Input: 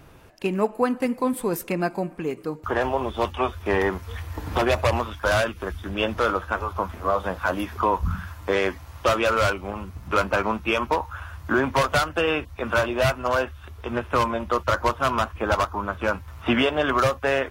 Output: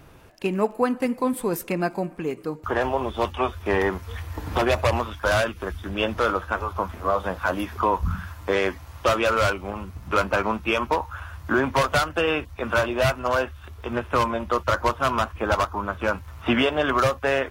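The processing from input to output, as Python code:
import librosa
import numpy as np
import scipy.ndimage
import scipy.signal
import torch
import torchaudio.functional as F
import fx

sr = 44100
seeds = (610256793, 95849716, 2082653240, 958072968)

y = fx.dmg_crackle(x, sr, seeds[0], per_s=fx.steps((0.0, 11.0), (5.32, 49.0)), level_db=-44.0)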